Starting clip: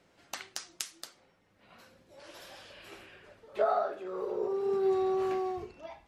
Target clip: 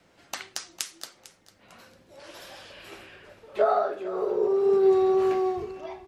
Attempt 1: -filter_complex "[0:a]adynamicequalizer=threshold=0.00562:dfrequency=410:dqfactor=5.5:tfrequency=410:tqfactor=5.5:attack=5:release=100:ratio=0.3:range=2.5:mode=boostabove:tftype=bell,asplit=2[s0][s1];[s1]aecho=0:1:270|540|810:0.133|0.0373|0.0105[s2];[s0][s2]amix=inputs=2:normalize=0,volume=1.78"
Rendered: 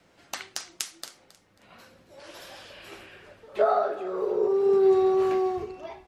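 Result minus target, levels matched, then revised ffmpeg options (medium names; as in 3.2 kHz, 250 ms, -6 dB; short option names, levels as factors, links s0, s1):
echo 180 ms early
-filter_complex "[0:a]adynamicequalizer=threshold=0.00562:dfrequency=410:dqfactor=5.5:tfrequency=410:tqfactor=5.5:attack=5:release=100:ratio=0.3:range=2.5:mode=boostabove:tftype=bell,asplit=2[s0][s1];[s1]aecho=0:1:450|900|1350:0.133|0.0373|0.0105[s2];[s0][s2]amix=inputs=2:normalize=0,volume=1.78"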